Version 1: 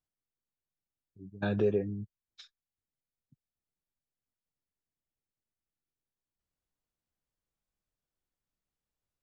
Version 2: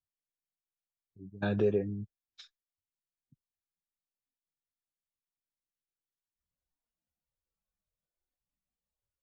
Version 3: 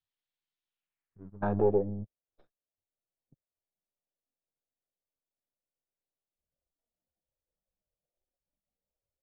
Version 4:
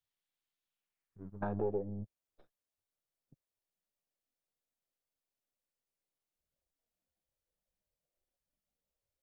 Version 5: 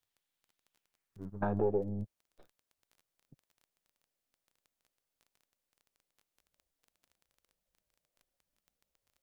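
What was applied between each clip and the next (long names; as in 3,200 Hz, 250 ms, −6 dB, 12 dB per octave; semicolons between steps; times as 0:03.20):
noise reduction from a noise print of the clip's start 11 dB
gain on one half-wave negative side −7 dB; low-pass filter sweep 3,600 Hz → 600 Hz, 0:00.68–0:01.80; level +2 dB
downward compressor 2 to 1, threshold −38 dBFS, peak gain reduction 10 dB
surface crackle 14 per second −54 dBFS; level +4 dB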